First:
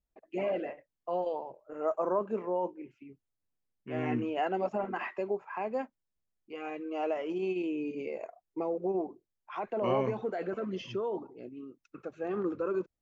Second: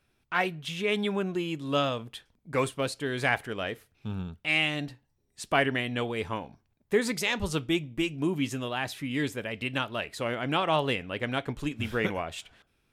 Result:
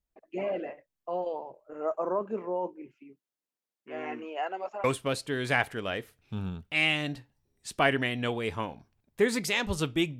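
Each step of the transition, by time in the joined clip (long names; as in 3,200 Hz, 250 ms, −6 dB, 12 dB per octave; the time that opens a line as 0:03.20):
first
0:02.92–0:04.84: high-pass filter 180 Hz → 770 Hz
0:04.84: continue with second from 0:02.57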